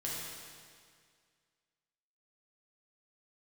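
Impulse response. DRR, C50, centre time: −6.0 dB, −2.0 dB, 124 ms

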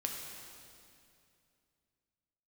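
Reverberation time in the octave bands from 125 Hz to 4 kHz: 3.0, 2.9, 2.6, 2.4, 2.3, 2.3 seconds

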